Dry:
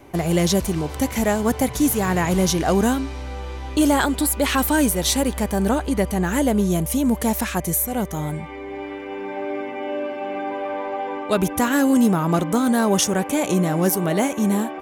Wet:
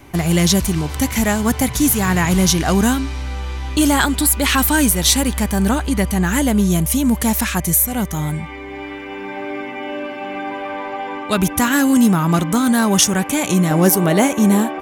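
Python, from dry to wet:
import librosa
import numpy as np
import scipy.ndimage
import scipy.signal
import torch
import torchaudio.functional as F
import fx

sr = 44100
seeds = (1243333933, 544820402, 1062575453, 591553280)

y = fx.peak_eq(x, sr, hz=510.0, db=fx.steps((0.0, -9.5), (13.71, -2.0)), octaves=1.6)
y = y * librosa.db_to_amplitude(7.0)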